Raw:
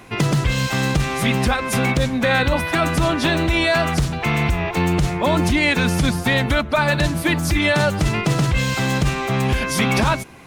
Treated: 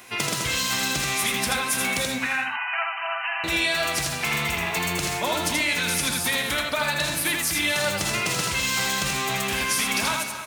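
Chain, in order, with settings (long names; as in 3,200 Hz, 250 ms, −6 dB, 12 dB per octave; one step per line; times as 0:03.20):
spectral tilt +3.5 dB per octave
downward compressor, threshold −18 dBFS, peak gain reduction 7 dB
flanger 0.38 Hz, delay 8.1 ms, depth 6.5 ms, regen −67%
0:02.18–0:03.44: linear-phase brick-wall band-pass 660–3,100 Hz
single-tap delay 81 ms −3.5 dB
reverb whose tail is shaped and stops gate 320 ms rising, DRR 9.5 dB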